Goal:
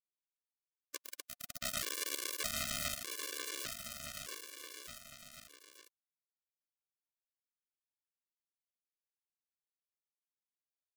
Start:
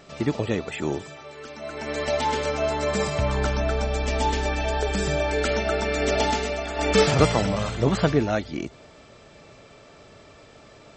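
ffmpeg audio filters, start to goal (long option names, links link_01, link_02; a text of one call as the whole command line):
ffmpeg -i in.wav -filter_complex "[0:a]aemphasis=mode=production:type=50kf,bandreject=frequency=186.6:width_type=h:width=4,bandreject=frequency=373.2:width_type=h:width=4,bandreject=frequency=559.8:width_type=h:width=4,bandreject=frequency=746.4:width_type=h:width=4,bandreject=frequency=933:width_type=h:width=4,bandreject=frequency=1119.6:width_type=h:width=4,bandreject=frequency=1306.2:width_type=h:width=4,bandreject=frequency=1492.8:width_type=h:width=4,bandreject=frequency=1679.4:width_type=h:width=4,bandreject=frequency=1866:width_type=h:width=4,bandreject=frequency=2052.6:width_type=h:width=4,bandreject=frequency=2239.2:width_type=h:width=4,bandreject=frequency=2425.8:width_type=h:width=4,bandreject=frequency=2612.4:width_type=h:width=4,bandreject=frequency=2799:width_type=h:width=4,bandreject=frequency=2985.6:width_type=h:width=4,bandreject=frequency=3172.2:width_type=h:width=4,bandreject=frequency=3358.8:width_type=h:width=4,bandreject=frequency=3545.4:width_type=h:width=4,bandreject=frequency=3732:width_type=h:width=4,bandreject=frequency=3918.6:width_type=h:width=4,bandreject=frequency=4105.2:width_type=h:width=4,adynamicequalizer=threshold=0.00501:dfrequency=3000:dqfactor=2.7:tfrequency=3000:tqfactor=2.7:attack=5:release=100:ratio=0.375:range=2.5:mode=boostabove:tftype=bell,acompressor=threshold=-29dB:ratio=12,alimiter=level_in=5.5dB:limit=-24dB:level=0:latency=1:release=86,volume=-5.5dB,asettb=1/sr,asplit=3[link_01][link_02][link_03];[link_01]atrim=end=0.934[link_04];[link_02]atrim=start=0.93:end=2.95,asetpts=PTS-STARTPTS,afade=type=in:duration=0.004:curve=qsin,afade=type=out:start_time=2.016:duration=0.004:curve=qsin,acontrast=83[link_05];[link_03]atrim=start=2.946[link_06];[link_04][link_05]acrossfade=duration=0.004:curve1=hsin:curve2=qsin[link_07];[link_07][link_06]acrossfade=duration=0.004:curve1=qsin:curve2=hsin,acrusher=bits=3:mix=0:aa=0.000001,asuperstop=centerf=860:order=12:qfactor=2.7,aecho=1:1:790|1462|2032|2517|2930:0.631|0.398|0.251|0.158|0.1,afftfilt=real='re*gt(sin(2*PI*0.82*pts/sr)*(1-2*mod(floor(b*sr/1024/300),2)),0)':imag='im*gt(sin(2*PI*0.82*pts/sr)*(1-2*mod(floor(b*sr/1024/300),2)),0)':win_size=1024:overlap=0.75,volume=2.5dB" out.wav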